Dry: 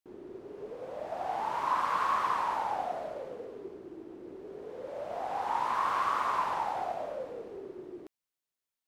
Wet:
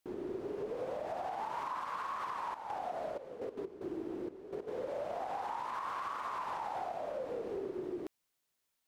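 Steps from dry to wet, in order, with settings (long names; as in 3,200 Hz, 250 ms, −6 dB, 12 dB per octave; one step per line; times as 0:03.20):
0:02.52–0:04.67: gate pattern ".x.x..xxxxxx.." 189 BPM −12 dB
downward compressor 5 to 1, threshold −43 dBFS, peak gain reduction 16 dB
brickwall limiter −38 dBFS, peak gain reduction 5.5 dB
level +7.5 dB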